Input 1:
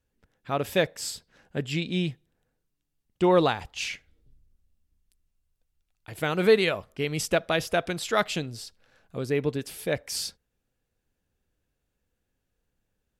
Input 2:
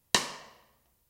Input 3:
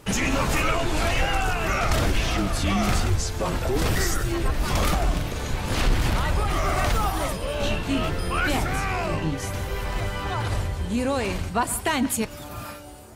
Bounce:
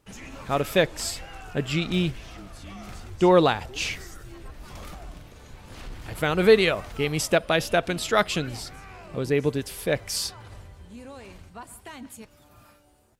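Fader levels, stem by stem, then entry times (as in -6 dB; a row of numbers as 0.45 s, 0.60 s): +3.0 dB, -20.0 dB, -18.0 dB; 0.00 s, 0.85 s, 0.00 s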